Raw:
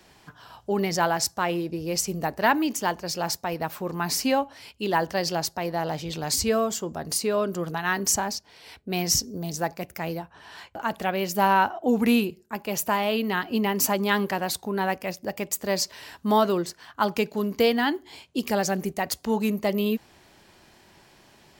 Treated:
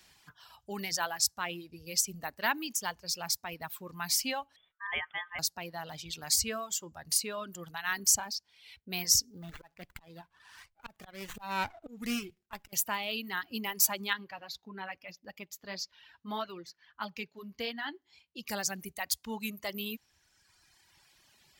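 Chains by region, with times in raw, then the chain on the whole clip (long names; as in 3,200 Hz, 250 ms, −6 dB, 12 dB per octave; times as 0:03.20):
0:04.56–0:05.39: Chebyshev low-pass with heavy ripple 2,100 Hz, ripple 3 dB + ring modulation 1,400 Hz
0:09.30–0:12.73: volume swells 254 ms + windowed peak hold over 9 samples
0:14.13–0:18.49: flanger 1.7 Hz, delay 3.6 ms, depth 4.2 ms, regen −45% + moving average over 5 samples
whole clip: reverb reduction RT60 1.8 s; guitar amp tone stack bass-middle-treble 5-5-5; level +5 dB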